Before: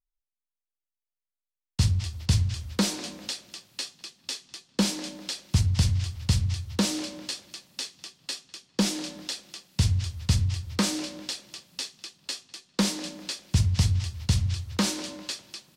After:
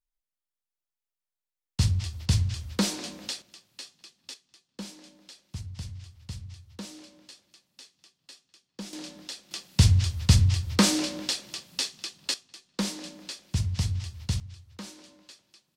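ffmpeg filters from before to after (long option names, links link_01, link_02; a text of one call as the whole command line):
ffmpeg -i in.wav -af "asetnsamples=nb_out_samples=441:pad=0,asendcmd='3.42 volume volume -8.5dB;4.34 volume volume -15.5dB;8.93 volume volume -5.5dB;9.51 volume volume 4.5dB;12.34 volume volume -5dB;14.4 volume volume -16.5dB',volume=-1dB" out.wav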